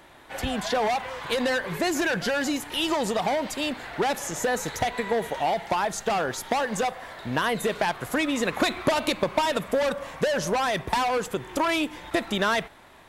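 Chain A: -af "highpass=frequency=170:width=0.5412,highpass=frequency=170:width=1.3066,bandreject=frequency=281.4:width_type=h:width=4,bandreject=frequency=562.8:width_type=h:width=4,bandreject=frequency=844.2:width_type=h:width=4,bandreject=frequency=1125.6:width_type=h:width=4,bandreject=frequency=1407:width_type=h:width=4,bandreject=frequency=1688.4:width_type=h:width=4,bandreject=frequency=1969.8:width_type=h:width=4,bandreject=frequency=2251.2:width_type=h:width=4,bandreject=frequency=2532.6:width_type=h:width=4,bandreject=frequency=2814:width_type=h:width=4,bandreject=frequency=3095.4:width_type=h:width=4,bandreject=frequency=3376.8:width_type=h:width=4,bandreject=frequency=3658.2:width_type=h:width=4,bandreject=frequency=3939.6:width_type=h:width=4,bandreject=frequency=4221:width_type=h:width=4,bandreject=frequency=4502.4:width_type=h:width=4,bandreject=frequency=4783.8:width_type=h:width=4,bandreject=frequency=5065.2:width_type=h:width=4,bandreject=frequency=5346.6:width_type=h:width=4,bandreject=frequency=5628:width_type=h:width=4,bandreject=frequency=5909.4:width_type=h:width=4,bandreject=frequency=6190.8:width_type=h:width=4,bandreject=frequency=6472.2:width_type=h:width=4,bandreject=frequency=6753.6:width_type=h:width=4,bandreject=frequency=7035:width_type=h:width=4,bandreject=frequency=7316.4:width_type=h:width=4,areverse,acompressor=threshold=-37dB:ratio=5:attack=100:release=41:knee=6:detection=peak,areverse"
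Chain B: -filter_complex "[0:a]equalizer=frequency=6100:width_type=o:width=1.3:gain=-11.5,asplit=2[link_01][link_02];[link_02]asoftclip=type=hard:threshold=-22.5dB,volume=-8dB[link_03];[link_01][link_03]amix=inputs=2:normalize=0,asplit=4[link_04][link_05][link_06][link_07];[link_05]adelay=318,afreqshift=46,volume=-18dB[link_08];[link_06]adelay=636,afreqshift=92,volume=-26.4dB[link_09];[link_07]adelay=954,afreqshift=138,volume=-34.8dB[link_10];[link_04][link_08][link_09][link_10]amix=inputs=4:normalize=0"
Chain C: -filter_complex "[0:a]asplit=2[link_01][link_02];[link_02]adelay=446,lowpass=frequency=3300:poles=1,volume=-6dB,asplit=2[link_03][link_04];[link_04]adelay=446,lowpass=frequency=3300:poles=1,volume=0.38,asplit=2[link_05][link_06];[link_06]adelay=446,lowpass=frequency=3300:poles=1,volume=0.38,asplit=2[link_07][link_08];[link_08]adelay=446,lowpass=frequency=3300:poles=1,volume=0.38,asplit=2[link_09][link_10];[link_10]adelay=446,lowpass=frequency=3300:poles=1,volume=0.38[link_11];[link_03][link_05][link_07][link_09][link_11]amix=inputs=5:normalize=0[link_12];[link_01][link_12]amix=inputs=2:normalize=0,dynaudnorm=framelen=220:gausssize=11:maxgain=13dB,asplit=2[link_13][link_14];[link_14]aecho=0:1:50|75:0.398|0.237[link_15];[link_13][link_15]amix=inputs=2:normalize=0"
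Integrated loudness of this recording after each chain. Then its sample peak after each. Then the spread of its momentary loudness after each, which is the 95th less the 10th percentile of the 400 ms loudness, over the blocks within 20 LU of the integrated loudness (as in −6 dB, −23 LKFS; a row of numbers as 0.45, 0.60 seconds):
−32.0, −24.5, −15.5 LKFS; −15.0, −9.5, −1.5 dBFS; 3, 5, 5 LU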